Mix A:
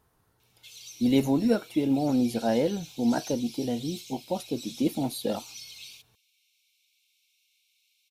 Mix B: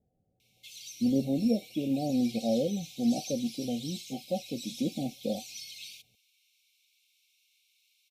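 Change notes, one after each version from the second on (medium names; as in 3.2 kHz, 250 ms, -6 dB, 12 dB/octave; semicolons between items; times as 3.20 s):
speech: add rippled Chebyshev low-pass 780 Hz, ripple 9 dB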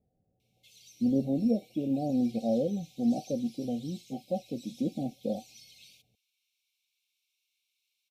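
background -10.5 dB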